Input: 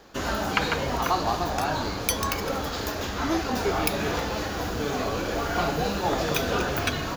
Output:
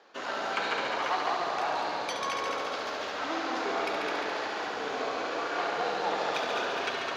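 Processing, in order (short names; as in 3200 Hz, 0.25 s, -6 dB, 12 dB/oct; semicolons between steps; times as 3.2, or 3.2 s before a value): tube stage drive 20 dB, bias 0.55; BPF 470–4100 Hz; multi-head echo 70 ms, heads all three, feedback 63%, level -8 dB; gain -2 dB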